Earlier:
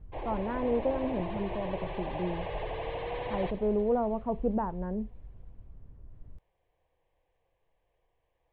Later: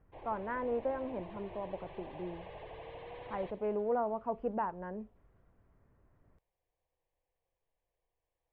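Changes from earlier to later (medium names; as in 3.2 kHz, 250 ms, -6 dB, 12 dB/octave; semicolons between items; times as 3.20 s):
speech: add tilt EQ +4.5 dB/octave; background -11.5 dB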